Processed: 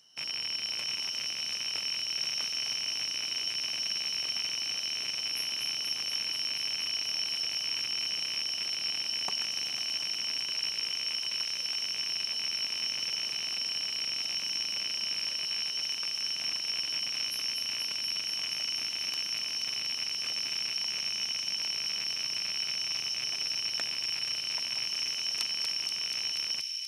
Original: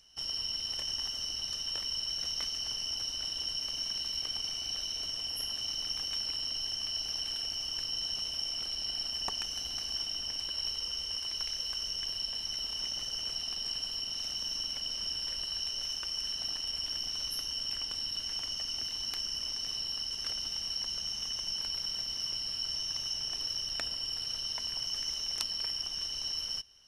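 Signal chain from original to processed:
loose part that buzzes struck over −56 dBFS, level −27 dBFS
high-pass filter 130 Hz 24 dB per octave
on a send: delay with a high-pass on its return 240 ms, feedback 84%, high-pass 3,600 Hz, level −5 dB

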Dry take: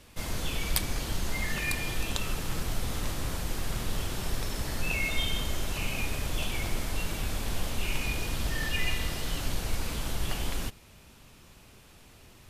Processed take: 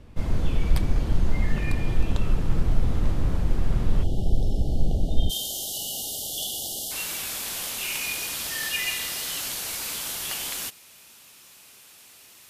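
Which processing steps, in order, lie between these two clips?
spectral tilt −4 dB per octave, from 0:05.29 +3.5 dB per octave
0:04.03–0:06.91: time-frequency box erased 860–2,800 Hz
low-shelf EQ 74 Hz −10.5 dB

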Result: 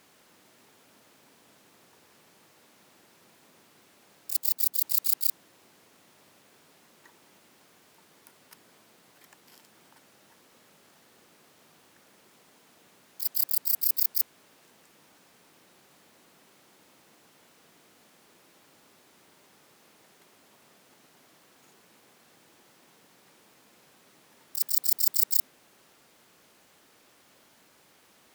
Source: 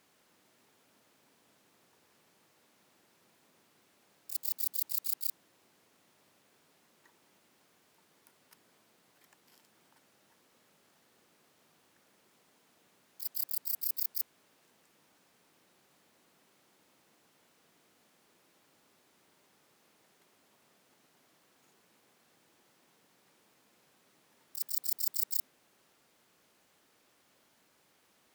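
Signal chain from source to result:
0:04.38–0:04.83: harmonic and percussive parts rebalanced harmonic −7 dB
level +8.5 dB

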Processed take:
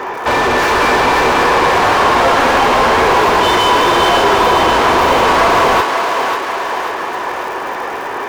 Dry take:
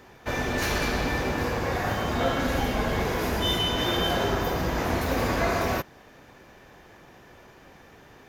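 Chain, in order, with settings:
graphic EQ with 15 bands 160 Hz −6 dB, 400 Hz +7 dB, 1,000 Hz +10 dB, 4,000 Hz −5 dB, 10,000 Hz −10 dB
mid-hump overdrive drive 29 dB, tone 2,900 Hz, clips at −12 dBFS
surface crackle 120 per second −30 dBFS
on a send: feedback echo with a high-pass in the loop 541 ms, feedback 59%, high-pass 470 Hz, level −4.5 dB
on the sum: level +5.5 dB

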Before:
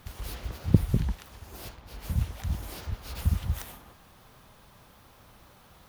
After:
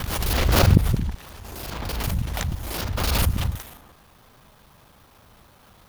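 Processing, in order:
reversed piece by piece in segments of 37 ms
background raised ahead of every attack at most 22 dB per second
level +2 dB

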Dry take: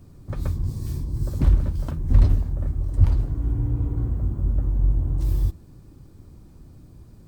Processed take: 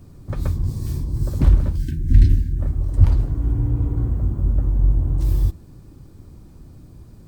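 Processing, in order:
time-frequency box erased 0:01.78–0:02.60, 380–1,500 Hz
level +3.5 dB

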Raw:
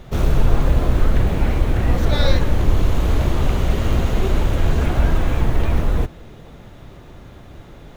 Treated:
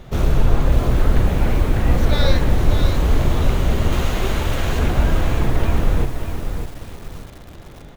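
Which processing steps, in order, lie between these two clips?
0:03.92–0:04.79: tilt shelving filter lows −4.5 dB, about 670 Hz
on a send: repeating echo 350 ms, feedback 42%, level −21 dB
on the sum: feedback echo at a low word length 597 ms, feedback 35%, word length 6 bits, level −7 dB

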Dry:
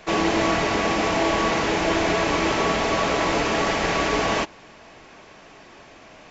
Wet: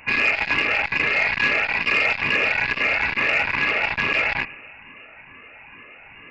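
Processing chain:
rippled gain that drifts along the octave scale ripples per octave 1.7, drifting −2.3 Hz, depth 12 dB
low-shelf EQ 300 Hz +4 dB
hum removal 80.9 Hz, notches 6
wrap-around overflow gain 8 dB
on a send at −17.5 dB: convolution reverb RT60 1.5 s, pre-delay 5 ms
on the sum: voice inversion scrambler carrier 2,800 Hz
saturating transformer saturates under 1,400 Hz

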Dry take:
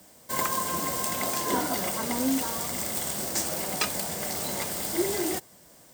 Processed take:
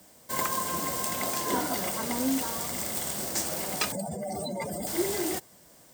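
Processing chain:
0:03.92–0:04.87: expanding power law on the bin magnitudes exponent 2.8
level −1.5 dB

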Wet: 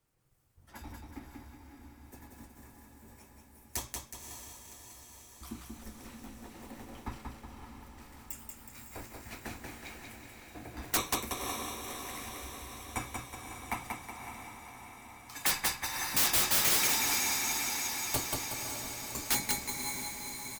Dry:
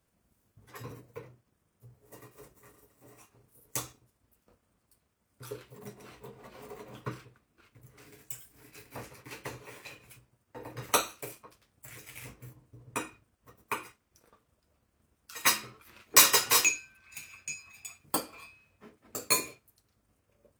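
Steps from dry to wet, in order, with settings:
repeating echo 185 ms, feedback 47%, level −4 dB
frequency shifter −190 Hz
on a send: feedback delay with all-pass diffusion 553 ms, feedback 65%, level −7 dB
on the sum: wrap-around overflow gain 18.5 dB
level −2 dB

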